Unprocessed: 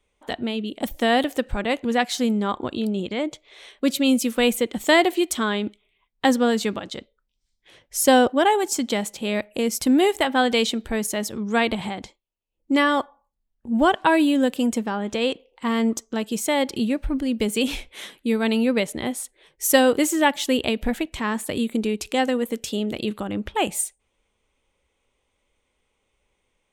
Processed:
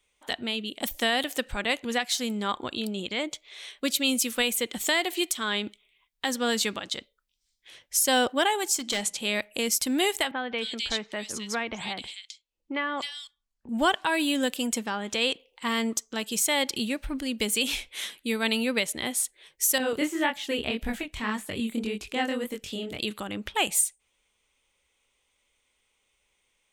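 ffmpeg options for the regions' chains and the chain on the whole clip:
-filter_complex "[0:a]asettb=1/sr,asplit=3[s0][s1][s2];[s0]atrim=end=8.794[s3];[s1]atrim=start=8.79:end=9.2,asetpts=PTS-STARTPTS,afade=t=in:d=0.004:c=qsin,afade=t=out:st=0.406:d=0.004:c=qsin,lowpass=f=11000:w=0.5412,lowpass=f=11000:w=1.3066,bandreject=f=60:t=h:w=6,bandreject=f=120:t=h:w=6,bandreject=f=180:t=h:w=6,bandreject=f=240:t=h:w=6,bandreject=f=300:t=h:w=6,bandreject=f=360:t=h:w=6,bandreject=f=420:t=h:w=6,asoftclip=type=hard:threshold=0.1[s4];[s2]atrim=start=9.196[s5];[s3][s4]acrossfade=d=0.004:c1=hsin:c2=qsin[s6];[s6][s5]acrossfade=d=0.004:c1=qsin:c2=hsin,asettb=1/sr,asplit=3[s7][s8][s9];[s7]atrim=end=10.314[s10];[s8]atrim=start=10.31:end=13.69,asetpts=PTS-STARTPTS,afade=t=in:d=0.004:c=qsin,afade=t=out:st=3.376:d=0.004:c=qsin,lowpass=6300,acrossover=split=400|4200[s11][s12][s13];[s11]acompressor=threshold=0.0316:ratio=4[s14];[s12]acompressor=threshold=0.0562:ratio=4[s15];[s13]acompressor=threshold=0.00891:ratio=4[s16];[s14][s15][s16]amix=inputs=3:normalize=0,acrossover=split=2700[s17][s18];[s18]adelay=260[s19];[s17][s19]amix=inputs=2:normalize=0,atrim=end_sample=149058[s20];[s9]atrim=start=13.686[s21];[s10][s20]acrossfade=d=0.004:c1=hsin:c2=qsin[s22];[s22][s21]acrossfade=d=0.004:c1=qsin:c2=hsin,asettb=1/sr,asplit=3[s23][s24][s25];[s23]atrim=end=19.784[s26];[s24]atrim=start=19.78:end=23,asetpts=PTS-STARTPTS,afade=t=in:d=0.004:c=qsin,afade=t=out:st=3.216:d=0.004:c=qsin,acrossover=split=3000[s27][s28];[s28]acompressor=threshold=0.00708:ratio=4:attack=1:release=60[s29];[s27][s29]amix=inputs=2:normalize=0,lowshelf=f=230:g=9,flanger=delay=19.5:depth=7.2:speed=1.8[s30];[s25]atrim=start=22.996[s31];[s26][s30]acrossfade=d=0.004:c1=hsin:c2=qsin[s32];[s32][s31]acrossfade=d=0.004:c1=qsin:c2=hsin,tiltshelf=f=1300:g=-7,alimiter=limit=0.266:level=0:latency=1:release=264,volume=0.841"

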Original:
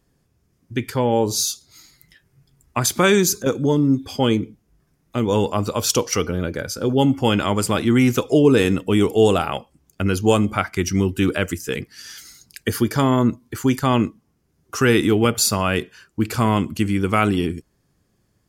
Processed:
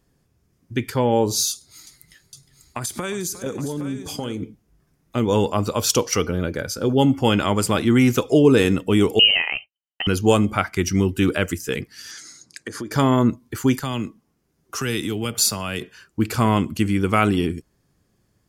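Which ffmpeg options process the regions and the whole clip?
-filter_complex "[0:a]asettb=1/sr,asplit=3[s0][s1][s2];[s0]atrim=end=1.514[s3];[s1]atrim=start=1.51:end=4.42,asetpts=PTS-STARTPTS,afade=t=in:d=0.004:c=qsin,afade=t=out:st=2.906:d=0.004:c=qsin,equalizer=f=9300:w=1.8:g=8.5,acompressor=threshold=0.0708:ratio=12:attack=3.2:release=140:knee=1:detection=peak,aecho=1:1:359|818:0.168|0.266,atrim=end_sample=128331[s4];[s2]atrim=start=4.416[s5];[s3][s4]acrossfade=d=0.004:c1=hsin:c2=qsin[s6];[s6][s5]acrossfade=d=0.004:c1=qsin:c2=hsin,asettb=1/sr,asplit=3[s7][s8][s9];[s7]atrim=end=9.194[s10];[s8]atrim=start=9.19:end=10.07,asetpts=PTS-STARTPTS,afade=t=in:d=0.004:c=qsin,afade=t=out:st=0.876:d=0.004:c=qsin,highpass=f=220:w=0.5412,highpass=f=220:w=1.3066,lowpass=f=2800:t=q:w=0.5098,lowpass=f=2800:t=q:w=0.6013,lowpass=f=2800:t=q:w=0.9,lowpass=f=2800:t=q:w=2.563,afreqshift=-3300,agate=range=0.0224:threshold=0.00891:ratio=3:release=100:detection=peak[s11];[s9]atrim=start=10.066[s12];[s10][s11]acrossfade=d=0.004:c1=hsin:c2=qsin[s13];[s13][s12]acrossfade=d=0.004:c1=qsin:c2=hsin,asettb=1/sr,asplit=3[s14][s15][s16];[s14]atrim=end=12.114[s17];[s15]atrim=start=12.11:end=12.92,asetpts=PTS-STARTPTS,afade=t=in:d=0.004:c=qsin,afade=t=out:st=0.806:d=0.004:c=qsin,highpass=130,equalizer=f=310:t=q:w=4:g=7,equalizer=f=550:t=q:w=4:g=5,equalizer=f=1100:t=q:w=4:g=4,equalizer=f=1700:t=q:w=4:g=3,equalizer=f=2900:t=q:w=4:g=-7,equalizer=f=6700:t=q:w=4:g=4,lowpass=f=9400:w=0.5412,lowpass=f=9400:w=1.3066,acompressor=threshold=0.0398:ratio=5:attack=3.2:release=140:knee=1:detection=peak[s18];[s16]atrim=start=12.916[s19];[s17][s18]acrossfade=d=0.004:c1=hsin:c2=qsin[s20];[s20][s19]acrossfade=d=0.004:c1=qsin:c2=hsin,asettb=1/sr,asplit=3[s21][s22][s23];[s21]atrim=end=13.784[s24];[s22]atrim=start=13.78:end=15.81,asetpts=PTS-STARTPTS,afade=t=in:d=0.004:c=qsin,afade=t=out:st=2.026:d=0.004:c=qsin,equalizer=f=85:w=0.94:g=-7.5,acrossover=split=160|3000[s25][s26][s27];[s26]acompressor=threshold=0.0316:ratio=2.5:attack=3.2:release=140:knee=2.83:detection=peak[s28];[s25][s28][s27]amix=inputs=3:normalize=0[s29];[s23]atrim=start=15.806[s30];[s24][s29]acrossfade=d=0.004:c1=hsin:c2=qsin[s31];[s31][s30]acrossfade=d=0.004:c1=qsin:c2=hsin"

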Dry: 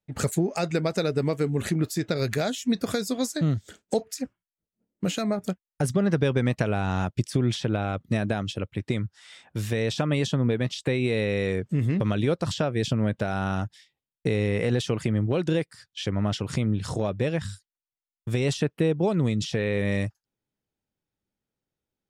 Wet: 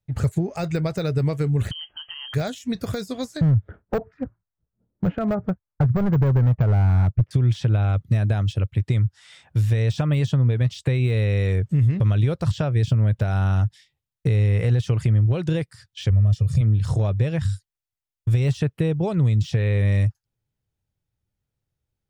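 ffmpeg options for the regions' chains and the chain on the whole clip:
-filter_complex "[0:a]asettb=1/sr,asplit=3[s0][s1][s2];[s0]atrim=end=1.714[s3];[s1]atrim=start=1.71:end=2.34,asetpts=PTS-STARTPTS,afade=t=in:d=0.004:c=qsin,afade=t=out:st=0.626:d=0.004:c=qsin,acompressor=threshold=0.0251:ratio=8:attack=3.2:release=140:knee=1:detection=peak,lowpass=f=2800:t=q:w=0.5098,lowpass=f=2800:t=q:w=0.6013,lowpass=f=2800:t=q:w=0.9,lowpass=f=2800:t=q:w=2.563,afreqshift=-3300[s4];[s2]atrim=start=2.336[s5];[s3][s4]acrossfade=d=0.004:c1=hsin:c2=qsin[s6];[s6][s5]acrossfade=d=0.004:c1=qsin:c2=hsin,asettb=1/sr,asplit=3[s7][s8][s9];[s7]atrim=end=3.414[s10];[s8]atrim=start=3.41:end=7.31,asetpts=PTS-STARTPTS,afade=t=in:d=0.004:c=qsin,afade=t=out:st=3.896:d=0.004:c=qsin,lowpass=f=1500:w=0.5412,lowpass=f=1500:w=1.3066,acontrast=22,asoftclip=type=hard:threshold=0.15[s11];[s9]atrim=start=7.306[s12];[s10][s11]acrossfade=d=0.004:c1=hsin:c2=qsin[s13];[s13][s12]acrossfade=d=0.004:c1=qsin:c2=hsin,asettb=1/sr,asplit=3[s14][s15][s16];[s14]atrim=end=16.104[s17];[s15]atrim=start=16.1:end=16.61,asetpts=PTS-STARTPTS,afade=t=in:d=0.004:c=qsin,afade=t=out:st=0.506:d=0.004:c=qsin,equalizer=f=1300:w=0.42:g=-14,bandreject=f=3000:w=19,aecho=1:1:1.7:0.99,atrim=end_sample=22491[s18];[s16]atrim=start=16.606[s19];[s17][s18]acrossfade=d=0.004:c1=hsin:c2=qsin[s20];[s20][s19]acrossfade=d=0.004:c1=qsin:c2=hsin,deesser=0.9,lowshelf=f=160:t=q:w=1.5:g=11,acompressor=threshold=0.158:ratio=3"

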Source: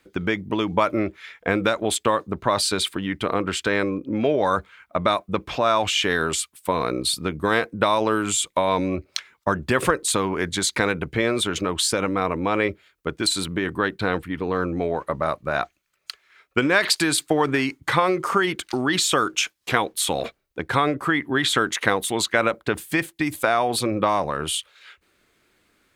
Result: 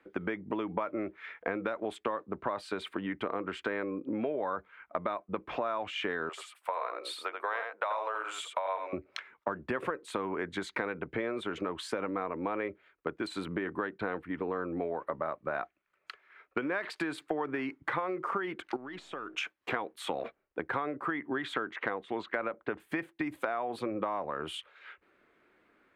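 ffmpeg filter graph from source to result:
-filter_complex "[0:a]asettb=1/sr,asplit=3[s0][s1][s2];[s0]atrim=end=6.294[s3];[s1]atrim=start=6.29:end=8.93,asetpts=PTS-STARTPTS,afade=t=in:d=0.004:c=qsin,afade=t=out:st=2.636:d=0.004:c=qsin,highpass=f=580:w=0.5412,highpass=f=580:w=1.3066,aecho=1:1:84:0.473,atrim=end_sample=116424[s4];[s2]atrim=start=8.926[s5];[s3][s4]acrossfade=d=0.004:c1=hsin:c2=qsin[s6];[s6][s5]acrossfade=d=0.004:c1=qsin:c2=hsin,asettb=1/sr,asplit=3[s7][s8][s9];[s7]atrim=end=18.764[s10];[s8]atrim=start=18.76:end=19.37,asetpts=PTS-STARTPTS,afade=t=in:d=0.004:c=qsin,afade=t=out:st=0.606:d=0.004:c=qsin,aeval=exprs='if(lt(val(0),0),0.708*val(0),val(0))':c=same,lowpass=10000,acompressor=threshold=0.0224:ratio=16:attack=3.2:release=140:knee=1:detection=peak[s11];[s9]atrim=start=19.366[s12];[s10][s11]acrossfade=d=0.004:c1=hsin:c2=qsin[s13];[s13][s12]acrossfade=d=0.004:c1=qsin:c2=hsin,asettb=1/sr,asplit=3[s14][s15][s16];[s14]atrim=end=21.544[s17];[s15]atrim=start=21.54:end=22.8,asetpts=PTS-STARTPTS,afade=t=in:d=0.004:c=qsin,afade=t=out:st=1.256:d=0.004:c=qsin,lowpass=3800,asoftclip=type=hard:threshold=0.531[s18];[s16]atrim=start=22.796[s19];[s17][s18]acrossfade=d=0.004:c1=hsin:c2=qsin[s20];[s20][s19]acrossfade=d=0.004:c1=qsin:c2=hsin,acrossover=split=210 2400:gain=0.251 1 0.0708[s21][s22][s23];[s21][s22][s23]amix=inputs=3:normalize=0,acompressor=threshold=0.0251:ratio=4"

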